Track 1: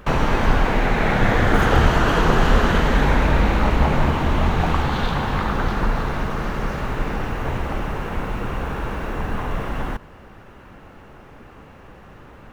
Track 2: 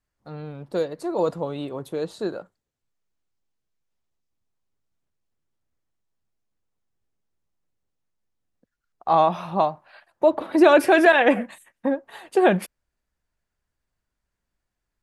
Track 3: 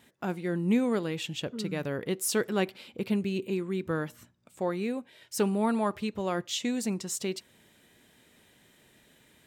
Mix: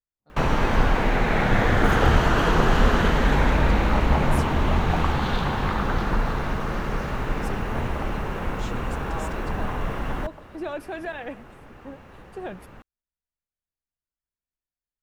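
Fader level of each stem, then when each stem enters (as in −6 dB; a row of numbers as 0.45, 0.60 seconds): −2.5, −18.0, −12.0 decibels; 0.30, 0.00, 2.10 seconds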